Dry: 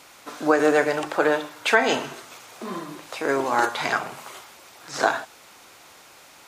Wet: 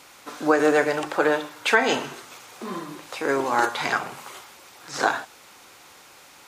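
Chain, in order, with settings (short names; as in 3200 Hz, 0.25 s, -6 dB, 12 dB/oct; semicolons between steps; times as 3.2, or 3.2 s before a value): notch 650 Hz, Q 12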